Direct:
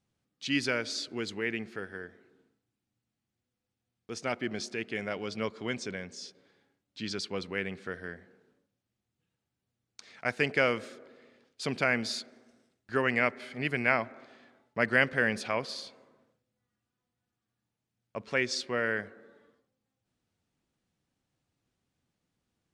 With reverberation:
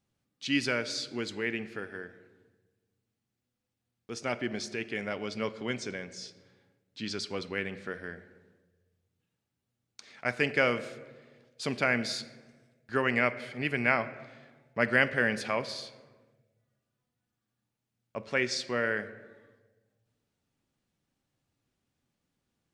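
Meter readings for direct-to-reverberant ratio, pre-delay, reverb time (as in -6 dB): 11.5 dB, 4 ms, 1.3 s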